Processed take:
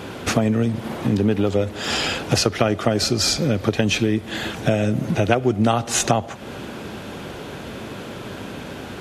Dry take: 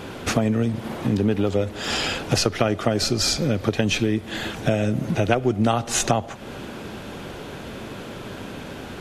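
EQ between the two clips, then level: high-pass 50 Hz; +2.0 dB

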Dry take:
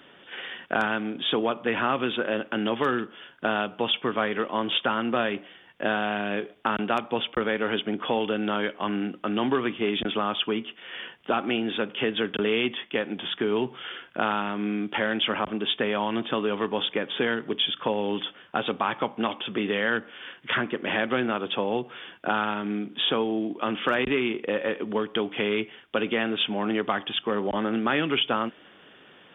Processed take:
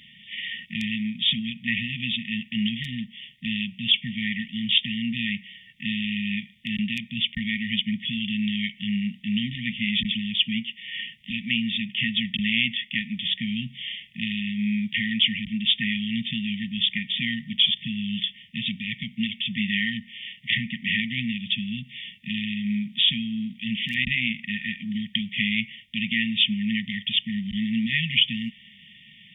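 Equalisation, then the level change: brick-wall FIR band-stop 240–1800 Hz; +6.0 dB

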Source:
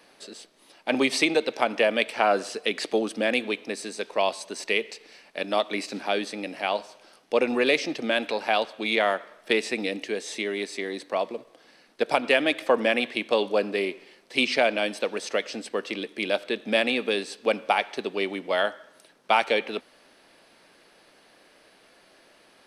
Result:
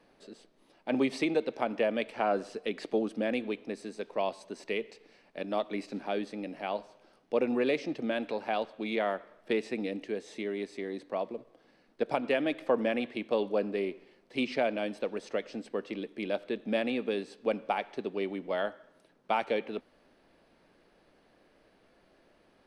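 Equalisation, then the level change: tilt EQ -3 dB/octave; -8.5 dB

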